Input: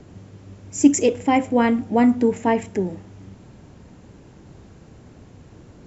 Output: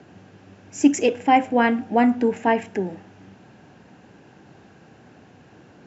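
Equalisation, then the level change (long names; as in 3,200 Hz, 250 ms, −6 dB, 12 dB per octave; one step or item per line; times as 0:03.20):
loudspeaker in its box 150–6,600 Hz, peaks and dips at 770 Hz +7 dB, 1,600 Hz +9 dB, 2,700 Hz +6 dB
−2.0 dB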